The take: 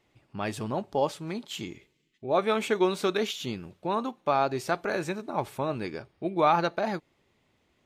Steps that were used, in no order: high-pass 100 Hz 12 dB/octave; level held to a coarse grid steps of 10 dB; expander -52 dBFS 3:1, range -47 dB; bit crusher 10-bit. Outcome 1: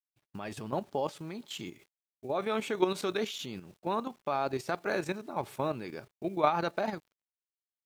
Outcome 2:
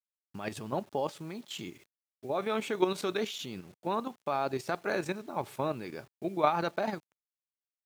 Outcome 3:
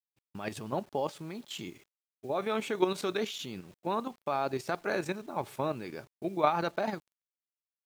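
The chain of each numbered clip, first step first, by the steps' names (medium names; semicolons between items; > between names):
high-pass > bit crusher > expander > level held to a coarse grid; expander > level held to a coarse grid > bit crusher > high-pass; level held to a coarse grid > high-pass > bit crusher > expander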